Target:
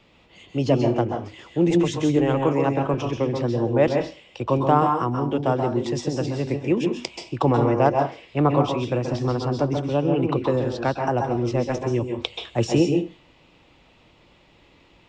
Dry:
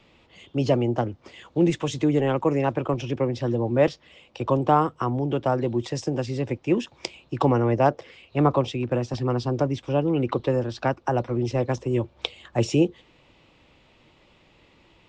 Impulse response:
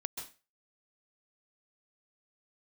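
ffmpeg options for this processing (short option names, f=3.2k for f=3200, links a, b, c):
-filter_complex "[1:a]atrim=start_sample=2205[a];[0:a][a]afir=irnorm=-1:irlink=0,volume=2dB"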